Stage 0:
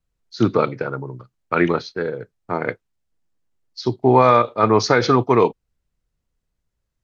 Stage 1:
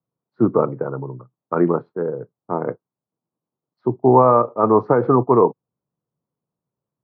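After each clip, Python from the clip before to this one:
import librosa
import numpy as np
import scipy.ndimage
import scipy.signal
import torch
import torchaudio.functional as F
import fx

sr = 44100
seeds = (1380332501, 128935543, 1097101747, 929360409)

y = scipy.signal.sosfilt(scipy.signal.cheby1(3, 1.0, [130.0, 1100.0], 'bandpass', fs=sr, output='sos'), x)
y = F.gain(torch.from_numpy(y), 1.5).numpy()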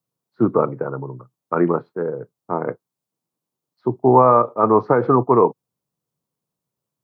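y = fx.high_shelf(x, sr, hz=2100.0, db=11.0)
y = F.gain(torch.from_numpy(y), -1.0).numpy()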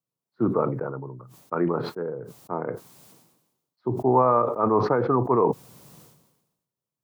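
y = fx.sustainer(x, sr, db_per_s=56.0)
y = F.gain(torch.from_numpy(y), -7.0).numpy()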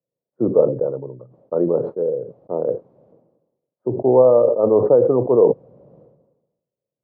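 y = fx.lowpass_res(x, sr, hz=540.0, q=4.9)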